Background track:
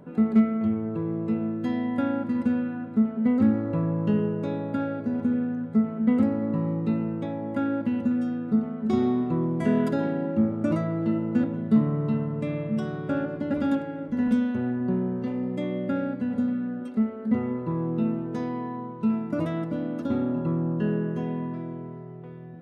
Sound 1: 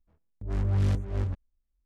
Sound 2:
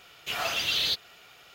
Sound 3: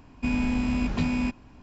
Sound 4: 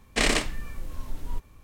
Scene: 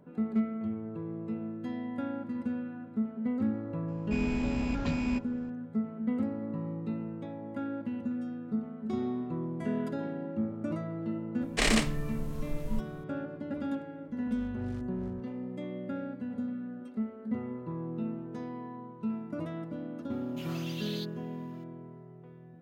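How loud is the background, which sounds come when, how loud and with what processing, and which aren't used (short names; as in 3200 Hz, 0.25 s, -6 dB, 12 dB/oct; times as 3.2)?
background track -9.5 dB
3.88 add 3 -5.5 dB
11.41 add 4 -3.5 dB
13.86 add 1 -16.5 dB
20.1 add 2 -17 dB + high shelf 8400 Hz +4.5 dB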